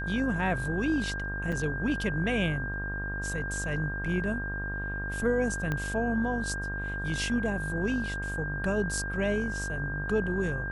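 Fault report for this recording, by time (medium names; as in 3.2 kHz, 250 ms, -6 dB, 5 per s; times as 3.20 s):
buzz 50 Hz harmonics 28 -36 dBFS
whine 1.6 kHz -34 dBFS
1.52–1.53 s: dropout 5.3 ms
5.72 s: pop -18 dBFS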